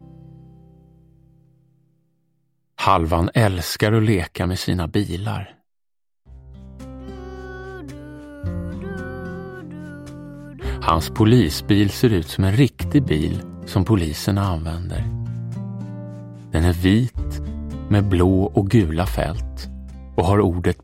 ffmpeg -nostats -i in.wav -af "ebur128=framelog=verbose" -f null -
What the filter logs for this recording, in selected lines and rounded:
Integrated loudness:
  I:         -20.5 LUFS
  Threshold: -32.2 LUFS
Loudness range:
  LRA:        13.9 LU
  Threshold: -42.1 LUFS
  LRA low:   -32.6 LUFS
  LRA high:  -18.7 LUFS